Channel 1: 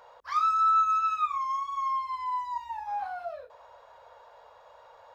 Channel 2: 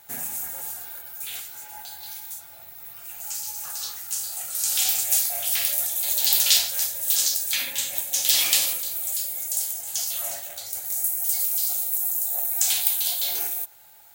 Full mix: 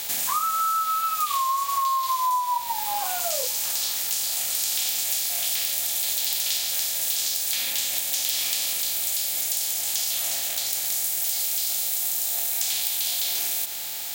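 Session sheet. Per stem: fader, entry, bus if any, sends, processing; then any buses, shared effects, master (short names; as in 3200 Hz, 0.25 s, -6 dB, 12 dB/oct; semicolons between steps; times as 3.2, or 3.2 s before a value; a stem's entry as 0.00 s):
+1.0 dB, 0.00 s, no send, expander -42 dBFS; small resonant body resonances 520/1000 Hz, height 17 dB, ringing for 25 ms
-4.0 dB, 0.00 s, no send, per-bin compression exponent 0.4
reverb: off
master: compressor, threshold -22 dBFS, peak gain reduction 11.5 dB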